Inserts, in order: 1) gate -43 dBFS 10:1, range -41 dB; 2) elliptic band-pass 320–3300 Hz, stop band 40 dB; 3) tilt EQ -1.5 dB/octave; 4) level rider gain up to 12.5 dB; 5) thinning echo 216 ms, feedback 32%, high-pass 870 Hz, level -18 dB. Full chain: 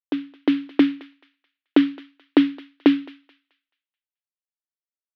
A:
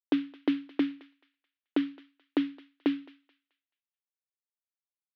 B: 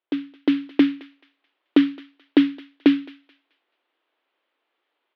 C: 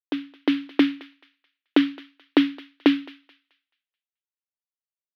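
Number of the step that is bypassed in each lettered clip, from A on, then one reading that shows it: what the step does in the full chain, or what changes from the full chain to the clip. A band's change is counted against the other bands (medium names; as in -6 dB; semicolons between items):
4, loudness change -10.5 LU; 1, 1 kHz band -4.0 dB; 3, 4 kHz band +3.5 dB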